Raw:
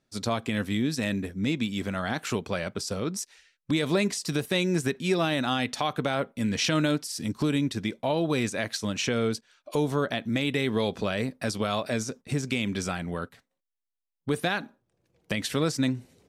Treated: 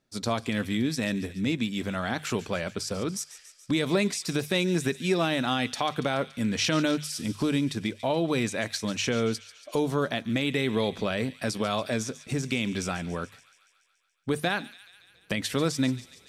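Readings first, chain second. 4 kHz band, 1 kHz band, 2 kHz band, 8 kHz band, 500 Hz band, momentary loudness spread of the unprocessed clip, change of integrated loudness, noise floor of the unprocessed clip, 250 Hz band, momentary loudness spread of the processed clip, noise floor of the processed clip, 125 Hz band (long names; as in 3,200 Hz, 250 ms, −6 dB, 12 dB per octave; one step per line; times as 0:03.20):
+0.5 dB, 0.0 dB, 0.0 dB, +0.5 dB, 0.0 dB, 6 LU, 0.0 dB, −83 dBFS, 0.0 dB, 7 LU, −63 dBFS, −1.0 dB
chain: mains-hum notches 50/100/150 Hz
on a send: delay with a high-pass on its return 142 ms, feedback 66%, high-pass 2,400 Hz, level −13.5 dB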